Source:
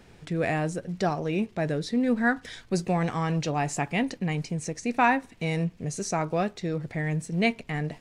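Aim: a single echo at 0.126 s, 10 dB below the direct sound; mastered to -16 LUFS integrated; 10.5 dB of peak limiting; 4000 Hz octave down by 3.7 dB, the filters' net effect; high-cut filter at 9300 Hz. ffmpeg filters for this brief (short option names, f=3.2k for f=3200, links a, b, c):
-af "lowpass=9.3k,equalizer=f=4k:t=o:g=-5,alimiter=limit=-20dB:level=0:latency=1,aecho=1:1:126:0.316,volume=14dB"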